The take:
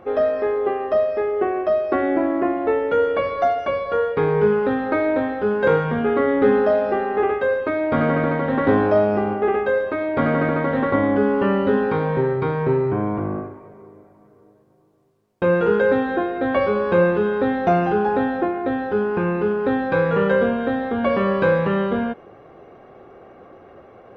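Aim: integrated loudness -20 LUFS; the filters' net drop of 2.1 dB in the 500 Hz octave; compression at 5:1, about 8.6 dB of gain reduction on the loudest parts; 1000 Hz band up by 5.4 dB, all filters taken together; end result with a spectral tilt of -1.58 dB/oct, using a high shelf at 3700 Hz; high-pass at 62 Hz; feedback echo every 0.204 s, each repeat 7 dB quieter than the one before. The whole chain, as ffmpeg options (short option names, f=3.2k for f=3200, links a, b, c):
-af "highpass=62,equalizer=f=500:t=o:g=-5,equalizer=f=1k:t=o:g=8.5,highshelf=f=3.7k:g=7,acompressor=threshold=-22dB:ratio=5,aecho=1:1:204|408|612|816|1020:0.447|0.201|0.0905|0.0407|0.0183,volume=4.5dB"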